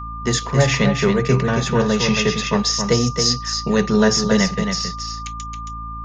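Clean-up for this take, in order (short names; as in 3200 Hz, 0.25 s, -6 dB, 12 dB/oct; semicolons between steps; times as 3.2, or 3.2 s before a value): de-hum 55.8 Hz, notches 5; notch 1200 Hz, Q 30; inverse comb 0.272 s -6 dB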